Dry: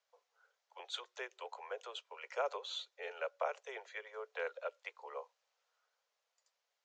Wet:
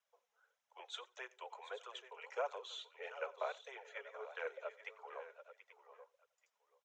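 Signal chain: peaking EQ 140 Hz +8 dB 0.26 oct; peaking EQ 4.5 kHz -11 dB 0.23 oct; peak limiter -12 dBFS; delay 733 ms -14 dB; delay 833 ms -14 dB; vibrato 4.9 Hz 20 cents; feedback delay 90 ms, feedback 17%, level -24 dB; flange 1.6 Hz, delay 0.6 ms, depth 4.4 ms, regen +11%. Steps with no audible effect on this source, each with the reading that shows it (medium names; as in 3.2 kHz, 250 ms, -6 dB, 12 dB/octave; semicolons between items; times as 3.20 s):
peaking EQ 140 Hz: input has nothing below 340 Hz; peak limiter -12 dBFS: peak at its input -24.0 dBFS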